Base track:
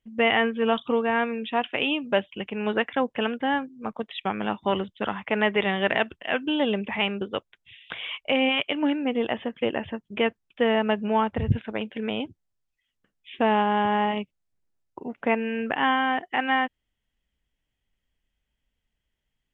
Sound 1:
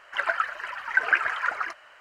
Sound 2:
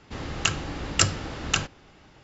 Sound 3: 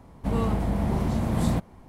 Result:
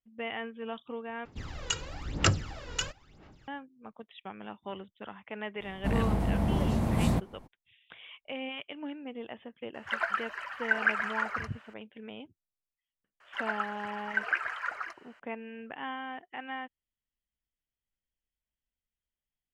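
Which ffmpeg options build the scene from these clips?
ffmpeg -i bed.wav -i cue0.wav -i cue1.wav -i cue2.wav -filter_complex "[1:a]asplit=2[link_01][link_02];[0:a]volume=-15.5dB[link_03];[2:a]aphaser=in_gain=1:out_gain=1:delay=2.1:decay=0.74:speed=1:type=sinusoidal[link_04];[link_03]asplit=2[link_05][link_06];[link_05]atrim=end=1.254[link_07];[link_04]atrim=end=2.23,asetpts=PTS-STARTPTS,volume=-11dB[link_08];[link_06]atrim=start=3.476[link_09];[3:a]atrim=end=1.88,asetpts=PTS-STARTPTS,volume=-2.5dB,afade=type=in:duration=0.02,afade=type=out:start_time=1.86:duration=0.02,adelay=5600[link_10];[link_01]atrim=end=2,asetpts=PTS-STARTPTS,volume=-5dB,afade=type=in:duration=0.004:curve=hsin,afade=type=out:start_time=1.996:duration=0.004:curve=hsin,adelay=9740[link_11];[link_02]atrim=end=2,asetpts=PTS-STARTPTS,volume=-8dB,afade=type=in:duration=0.004:curve=hsin,afade=type=out:start_time=1.996:duration=0.004:curve=hsin,adelay=13200[link_12];[link_07][link_08]acrossfade=duration=0.004:curve1=hsin:curve2=hsin[link_13];[link_13][link_09]acrossfade=duration=0.004:curve1=hsin:curve2=hsin[link_14];[link_14][link_10][link_11][link_12]amix=inputs=4:normalize=0" out.wav

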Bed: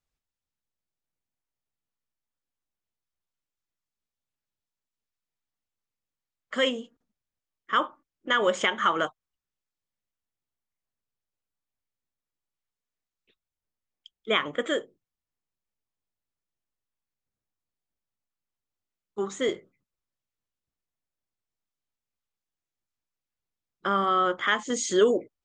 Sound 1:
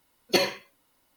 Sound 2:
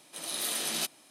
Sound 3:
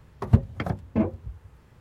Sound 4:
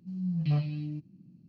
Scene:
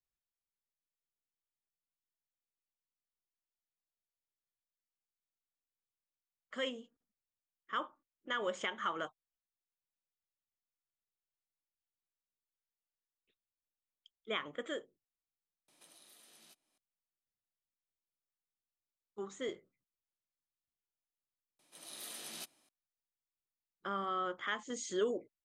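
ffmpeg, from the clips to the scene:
ffmpeg -i bed.wav -i cue0.wav -i cue1.wav -filter_complex "[2:a]asplit=2[link_01][link_02];[0:a]volume=-13dB[link_03];[link_01]acompressor=threshold=-49dB:ratio=6:attack=20:release=586:knee=1:detection=peak,atrim=end=1.1,asetpts=PTS-STARTPTS,volume=-12.5dB,afade=type=in:duration=0.004:curve=hsin,afade=type=out:start_time=1.096:duration=0.004:curve=hsin,adelay=15680[link_04];[link_02]atrim=end=1.1,asetpts=PTS-STARTPTS,volume=-14.5dB,afade=type=in:duration=0.004:curve=hsin,afade=type=out:start_time=1.096:duration=0.004:curve=hsin,adelay=21590[link_05];[link_03][link_04][link_05]amix=inputs=3:normalize=0" out.wav

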